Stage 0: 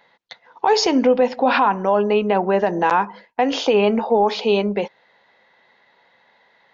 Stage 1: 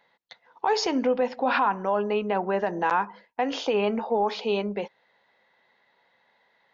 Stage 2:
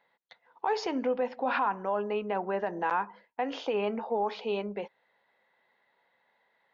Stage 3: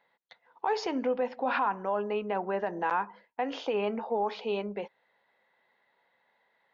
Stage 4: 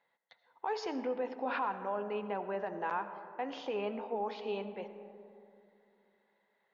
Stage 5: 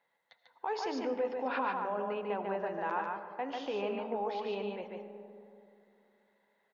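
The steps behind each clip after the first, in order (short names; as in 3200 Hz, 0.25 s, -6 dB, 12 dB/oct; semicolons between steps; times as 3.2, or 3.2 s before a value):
dynamic EQ 1400 Hz, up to +4 dB, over -29 dBFS, Q 1.2; gain -8.5 dB
tone controls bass -3 dB, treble -9 dB; gain -5 dB
nothing audible
digital reverb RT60 2.8 s, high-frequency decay 0.3×, pre-delay 45 ms, DRR 10.5 dB; gain -6.5 dB
echo 0.145 s -3.5 dB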